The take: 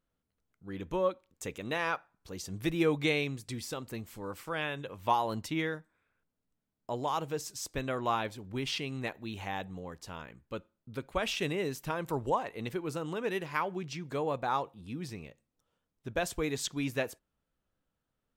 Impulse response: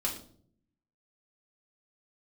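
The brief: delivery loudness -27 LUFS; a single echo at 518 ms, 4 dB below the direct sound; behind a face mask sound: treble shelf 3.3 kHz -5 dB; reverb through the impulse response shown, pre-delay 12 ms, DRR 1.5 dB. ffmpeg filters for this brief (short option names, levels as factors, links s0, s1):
-filter_complex "[0:a]aecho=1:1:518:0.631,asplit=2[s0][s1];[1:a]atrim=start_sample=2205,adelay=12[s2];[s1][s2]afir=irnorm=-1:irlink=0,volume=0.501[s3];[s0][s3]amix=inputs=2:normalize=0,highshelf=f=3300:g=-5,volume=1.78"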